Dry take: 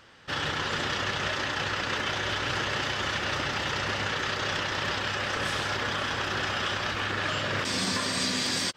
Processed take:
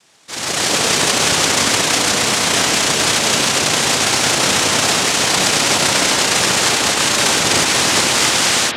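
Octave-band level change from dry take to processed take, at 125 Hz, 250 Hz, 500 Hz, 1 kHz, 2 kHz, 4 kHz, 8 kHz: +8.5, +13.0, +13.5, +12.5, +11.0, +15.5, +24.0 dB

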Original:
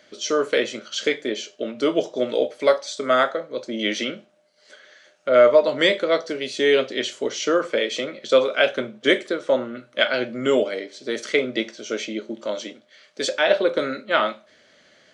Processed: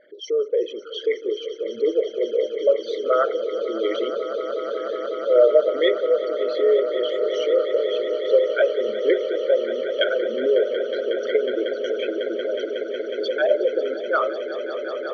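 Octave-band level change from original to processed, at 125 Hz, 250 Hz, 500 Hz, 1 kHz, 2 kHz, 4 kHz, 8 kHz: under -20 dB, -4.0 dB, +2.0 dB, -3.5 dB, -6.5 dB, -6.0 dB, under -15 dB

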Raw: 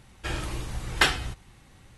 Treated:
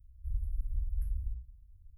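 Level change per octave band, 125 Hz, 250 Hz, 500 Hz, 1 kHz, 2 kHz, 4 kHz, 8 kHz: -4.0 dB, under -30 dB, under -40 dB, under -40 dB, under -40 dB, under -40 dB, -35.5 dB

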